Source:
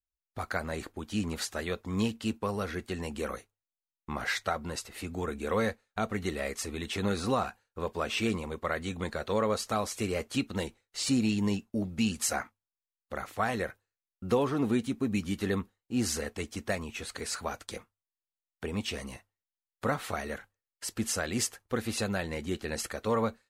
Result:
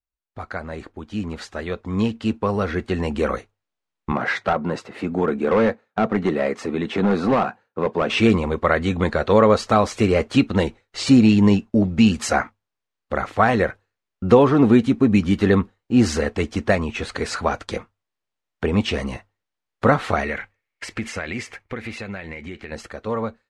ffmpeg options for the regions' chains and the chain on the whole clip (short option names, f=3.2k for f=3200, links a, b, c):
-filter_complex "[0:a]asettb=1/sr,asplit=3[a][b][c];[a]atrim=end=4.124[d];[b]atrim=start=4.12:end=8.1,asetpts=PTS-STARTPTS,afade=t=in:d=0.004:c=qsin,afade=t=out:st=3.976:d=0.004:c=qsin,highpass=f=130:w=0.5412,highpass=f=130:w=1.3066,highshelf=f=2.5k:g=-10.5,asoftclip=type=hard:threshold=-27.5dB[e];[c]atrim=start=8.096[f];[d][e]acrossfade=d=0.004:c1=hsin:c2=qsin[g];[g][f]acrossfade=d=0.004:c1=qsin:c2=hsin,asettb=1/sr,asplit=3[h][i][j];[h]atrim=end=20.234[k];[i]atrim=start=20.23:end=22.72,asetpts=PTS-STARTPTS,afade=t=in:d=0.004:c=qsin,afade=t=out:st=2.486:d=0.004:c=qsin,equalizer=f=2.2k:w=2.5:g=14.5,acompressor=threshold=-34dB:ratio=5:attack=3.2:release=140:knee=1:detection=peak[l];[j]atrim=start=22.716[m];[k][l]acrossfade=d=0.004:c1=hsin:c2=qsin[n];[n][m]acrossfade=d=0.004:c1=qsin:c2=hsin,lowpass=9.4k,aemphasis=mode=reproduction:type=75fm,dynaudnorm=f=280:g=17:m=11.5dB,volume=2.5dB"